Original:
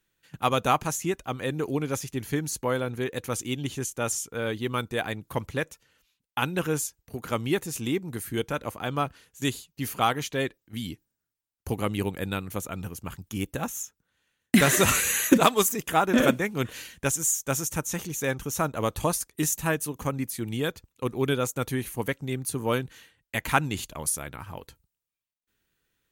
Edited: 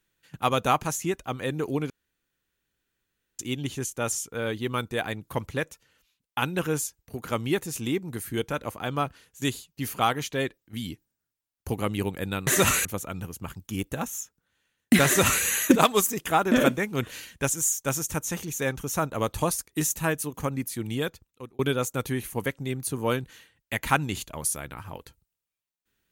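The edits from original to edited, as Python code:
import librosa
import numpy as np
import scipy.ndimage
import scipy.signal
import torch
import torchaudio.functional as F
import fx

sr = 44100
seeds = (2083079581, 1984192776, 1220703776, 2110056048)

y = fx.edit(x, sr, fx.room_tone_fill(start_s=1.9, length_s=1.49),
    fx.duplicate(start_s=14.68, length_s=0.38, to_s=12.47),
    fx.fade_out_span(start_s=20.61, length_s=0.6), tone=tone)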